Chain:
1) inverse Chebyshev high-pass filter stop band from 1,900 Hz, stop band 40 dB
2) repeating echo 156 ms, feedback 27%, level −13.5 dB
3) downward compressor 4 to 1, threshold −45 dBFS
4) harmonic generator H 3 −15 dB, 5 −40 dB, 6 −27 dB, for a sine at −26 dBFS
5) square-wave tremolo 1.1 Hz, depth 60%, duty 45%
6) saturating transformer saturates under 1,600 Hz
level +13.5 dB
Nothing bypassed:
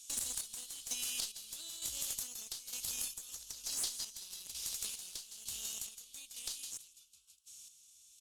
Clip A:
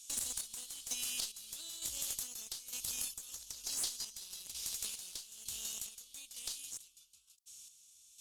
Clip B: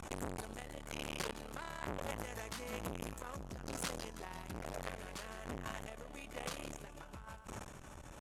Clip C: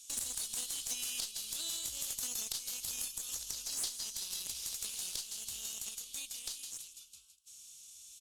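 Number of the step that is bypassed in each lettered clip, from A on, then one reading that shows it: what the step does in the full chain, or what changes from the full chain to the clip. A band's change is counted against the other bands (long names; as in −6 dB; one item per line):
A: 2, change in momentary loudness spread −2 LU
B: 1, 8 kHz band −29.0 dB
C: 5, change in crest factor −2.0 dB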